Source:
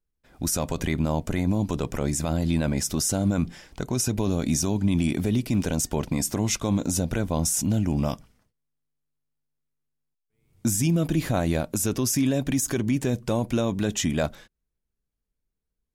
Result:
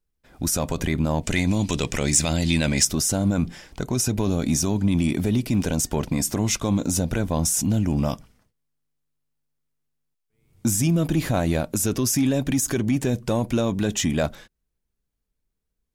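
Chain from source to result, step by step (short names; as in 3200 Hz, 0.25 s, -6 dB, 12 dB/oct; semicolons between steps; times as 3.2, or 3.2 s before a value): 1.23–2.85 band shelf 4100 Hz +10.5 dB 2.6 oct; in parallel at -7 dB: soft clip -23.5 dBFS, distortion -10 dB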